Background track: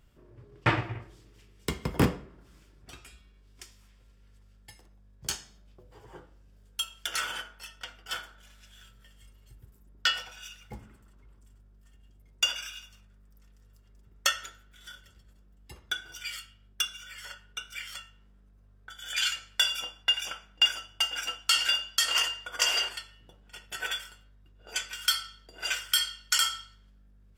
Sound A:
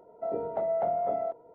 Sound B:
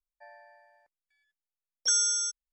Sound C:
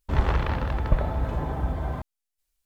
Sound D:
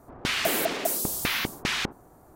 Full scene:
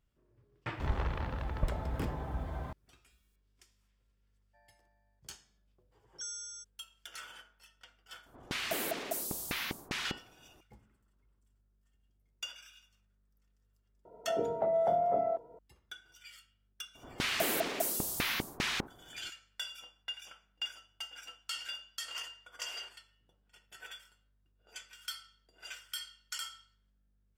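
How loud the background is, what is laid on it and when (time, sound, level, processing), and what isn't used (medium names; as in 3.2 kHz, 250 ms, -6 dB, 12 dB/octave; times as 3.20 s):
background track -15.5 dB
0.71 s: add C -10.5 dB + tape noise reduction on one side only encoder only
4.33 s: add B -17 dB
8.26 s: add D -9.5 dB
14.05 s: add A -0.5 dB + peaking EQ 140 Hz +3 dB
16.95 s: add D -6 dB + block-companded coder 7-bit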